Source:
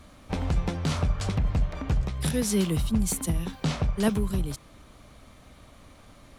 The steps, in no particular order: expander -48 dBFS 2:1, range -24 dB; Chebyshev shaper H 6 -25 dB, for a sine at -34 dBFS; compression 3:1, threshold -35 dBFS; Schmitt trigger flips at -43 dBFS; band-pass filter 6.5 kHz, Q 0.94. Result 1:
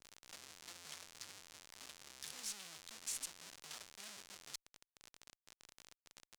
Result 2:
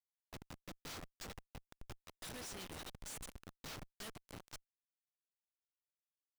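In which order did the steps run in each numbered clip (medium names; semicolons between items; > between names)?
compression > Schmitt trigger > expander > band-pass filter > Chebyshev shaper; expander > band-pass filter > compression > Chebyshev shaper > Schmitt trigger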